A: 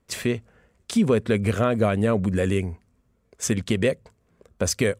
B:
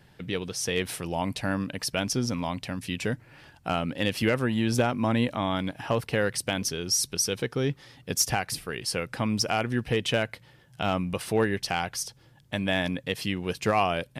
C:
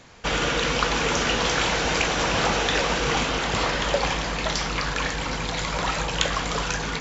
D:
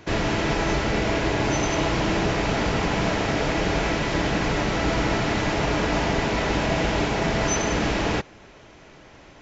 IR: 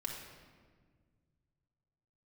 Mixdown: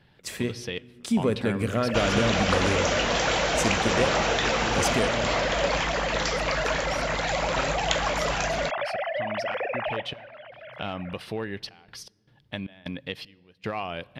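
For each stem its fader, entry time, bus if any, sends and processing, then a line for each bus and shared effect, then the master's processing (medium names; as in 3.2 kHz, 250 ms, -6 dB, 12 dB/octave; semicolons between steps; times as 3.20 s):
-6.5 dB, 0.15 s, no bus, send -8 dB, none
-3.5 dB, 0.00 s, bus A, send -23 dB, resonant high shelf 5.4 kHz -10.5 dB, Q 1.5; trance gate "x.xx..xxxxxx.x.x" 77 bpm -24 dB
-3.0 dB, 1.70 s, no bus, no send, none
-11.5 dB, 1.80 s, bus A, send -20.5 dB, formants replaced by sine waves; level rider gain up to 15.5 dB
bus A: 0.0 dB, compression, threshold -28 dBFS, peak gain reduction 10.5 dB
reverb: on, RT60 1.7 s, pre-delay 4 ms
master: none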